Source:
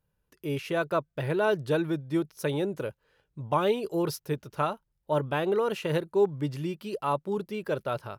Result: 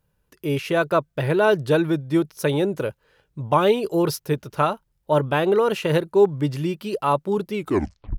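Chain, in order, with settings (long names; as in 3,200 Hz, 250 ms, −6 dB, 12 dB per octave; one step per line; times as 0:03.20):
turntable brake at the end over 0.64 s
level +7.5 dB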